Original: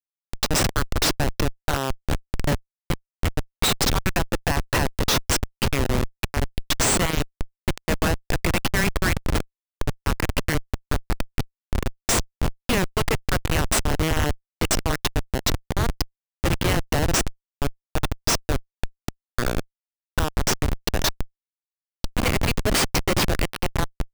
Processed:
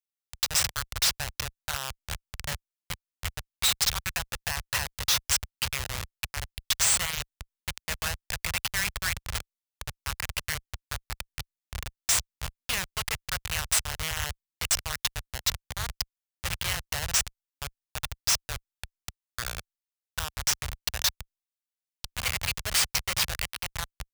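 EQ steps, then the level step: HPF 62 Hz 12 dB/oct; passive tone stack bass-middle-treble 10-0-10; 0.0 dB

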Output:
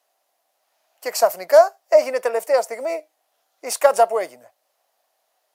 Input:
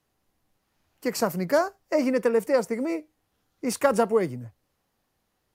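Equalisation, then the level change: resonant high-pass 650 Hz, resonance Q 5.3; high shelf 2100 Hz +9 dB; -1.5 dB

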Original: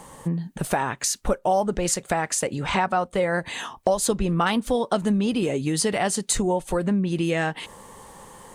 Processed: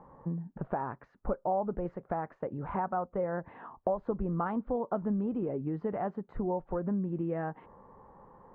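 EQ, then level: LPF 1300 Hz 24 dB/oct; -9.0 dB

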